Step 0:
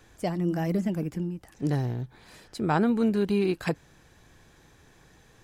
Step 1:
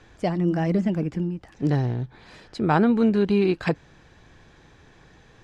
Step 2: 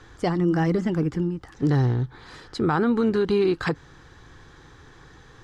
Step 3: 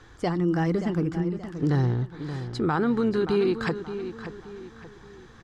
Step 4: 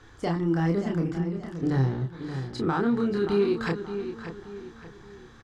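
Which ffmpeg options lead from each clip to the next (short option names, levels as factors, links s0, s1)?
-af "lowpass=4700,volume=1.68"
-af "equalizer=f=200:t=o:w=0.33:g=-9,equalizer=f=630:t=o:w=0.33:g=-10,equalizer=f=1250:t=o:w=0.33:g=5,equalizer=f=2500:t=o:w=0.33:g=-8,alimiter=limit=0.126:level=0:latency=1:release=73,volume=1.68"
-filter_complex "[0:a]asplit=2[s0][s1];[s1]adelay=577,lowpass=f=4400:p=1,volume=0.299,asplit=2[s2][s3];[s3]adelay=577,lowpass=f=4400:p=1,volume=0.39,asplit=2[s4][s5];[s5]adelay=577,lowpass=f=4400:p=1,volume=0.39,asplit=2[s6][s7];[s7]adelay=577,lowpass=f=4400:p=1,volume=0.39[s8];[s0][s2][s4][s6][s8]amix=inputs=5:normalize=0,volume=0.75"
-filter_complex "[0:a]asplit=2[s0][s1];[s1]asoftclip=type=hard:threshold=0.0501,volume=0.282[s2];[s0][s2]amix=inputs=2:normalize=0,asplit=2[s3][s4];[s4]adelay=30,volume=0.708[s5];[s3][s5]amix=inputs=2:normalize=0,volume=0.596"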